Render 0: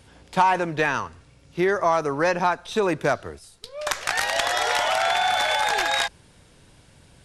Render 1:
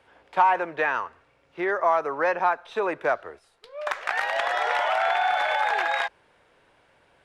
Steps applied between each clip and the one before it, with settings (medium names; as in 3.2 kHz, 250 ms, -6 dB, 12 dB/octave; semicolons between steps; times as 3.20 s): three-band isolator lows -19 dB, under 400 Hz, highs -19 dB, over 2.7 kHz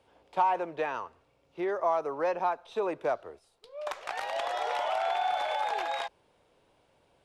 peaking EQ 1.7 kHz -11.5 dB 1.1 oct; trim -3 dB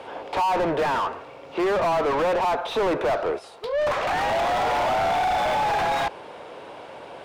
overdrive pedal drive 39 dB, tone 1.2 kHz, clips at -14.5 dBFS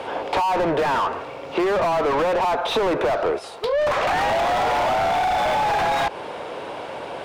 compression, threshold -27 dBFS, peak gain reduction 7.5 dB; trim +8 dB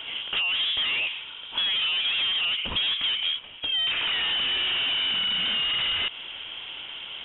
frequency inversion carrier 3.7 kHz; trim -5.5 dB